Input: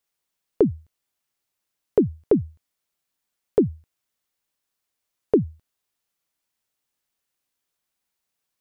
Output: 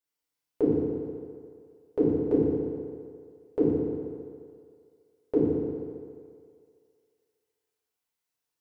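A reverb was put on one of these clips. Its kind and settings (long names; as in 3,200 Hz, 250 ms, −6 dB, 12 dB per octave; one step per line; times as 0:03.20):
feedback delay network reverb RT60 2.2 s, low-frequency decay 0.75×, high-frequency decay 0.75×, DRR −8 dB
level −13 dB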